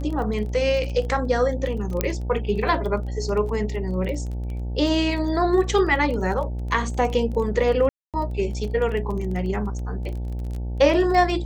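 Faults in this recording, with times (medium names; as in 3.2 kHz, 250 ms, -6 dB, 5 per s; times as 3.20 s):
buzz 60 Hz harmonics 15 -28 dBFS
crackle 19 per s -30 dBFS
2.01 s: pop -6 dBFS
7.89–8.14 s: dropout 247 ms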